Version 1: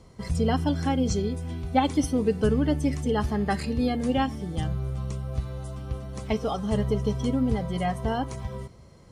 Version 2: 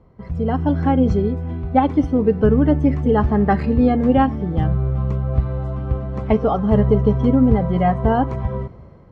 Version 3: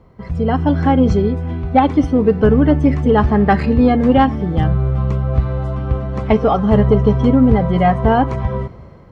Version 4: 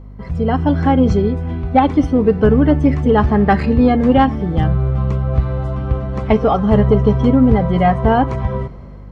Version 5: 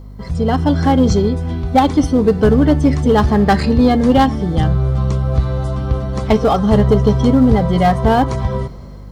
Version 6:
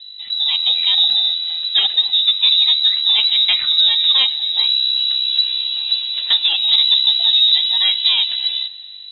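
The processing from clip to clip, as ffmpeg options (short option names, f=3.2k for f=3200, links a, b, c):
-af "lowpass=1.5k,dynaudnorm=f=260:g=5:m=11.5dB"
-af "tiltshelf=f=1.3k:g=-3,asoftclip=type=tanh:threshold=-7dB,volume=6.5dB"
-af "aeval=exprs='val(0)+0.02*(sin(2*PI*50*n/s)+sin(2*PI*2*50*n/s)/2+sin(2*PI*3*50*n/s)/3+sin(2*PI*4*50*n/s)/4+sin(2*PI*5*50*n/s)/5)':c=same"
-filter_complex "[0:a]asplit=2[a][b];[b]volume=13.5dB,asoftclip=hard,volume=-13.5dB,volume=-10.5dB[c];[a][c]amix=inputs=2:normalize=0,aexciter=amount=3.5:drive=6.7:freq=3.6k,volume=-1dB"
-af "equalizer=f=820:w=2.8:g=-3.5,lowpass=f=3.4k:t=q:w=0.5098,lowpass=f=3.4k:t=q:w=0.6013,lowpass=f=3.4k:t=q:w=0.9,lowpass=f=3.4k:t=q:w=2.563,afreqshift=-4000,volume=-2.5dB"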